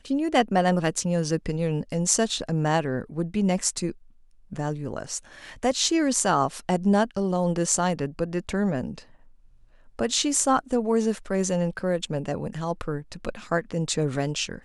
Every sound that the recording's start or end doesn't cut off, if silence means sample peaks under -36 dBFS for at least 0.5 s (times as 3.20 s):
4.52–9.00 s